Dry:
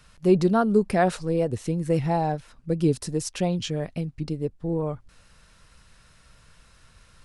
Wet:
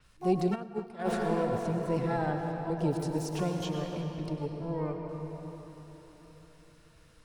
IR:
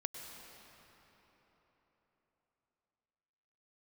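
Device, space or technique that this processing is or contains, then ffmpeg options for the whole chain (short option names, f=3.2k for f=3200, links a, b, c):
shimmer-style reverb: -filter_complex "[0:a]asplit=2[a][b];[b]asetrate=88200,aresample=44100,atempo=0.5,volume=-9dB[c];[a][c]amix=inputs=2:normalize=0[d];[1:a]atrim=start_sample=2205[e];[d][e]afir=irnorm=-1:irlink=0,asplit=3[f][g][h];[f]afade=t=out:st=0.54:d=0.02[i];[g]agate=range=-33dB:threshold=-10dB:ratio=3:detection=peak,afade=t=in:st=0.54:d=0.02,afade=t=out:st=1.04:d=0.02[j];[h]afade=t=in:st=1.04:d=0.02[k];[i][j][k]amix=inputs=3:normalize=0,adynamicequalizer=threshold=0.00224:dfrequency=6500:dqfactor=0.7:tfrequency=6500:tqfactor=0.7:attack=5:release=100:ratio=0.375:range=2.5:mode=cutabove:tftype=highshelf,volume=-6dB"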